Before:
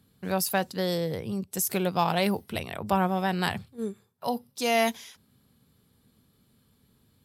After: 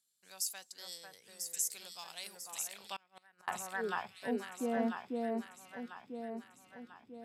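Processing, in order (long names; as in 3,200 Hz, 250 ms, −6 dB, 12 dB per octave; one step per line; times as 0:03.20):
band-pass filter sweep 7,300 Hz → 300 Hz, 0:02.54–0:04.14
delay that swaps between a low-pass and a high-pass 497 ms, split 1,900 Hz, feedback 69%, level −2 dB
0:02.96–0:03.48: gate with flip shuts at −32 dBFS, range −29 dB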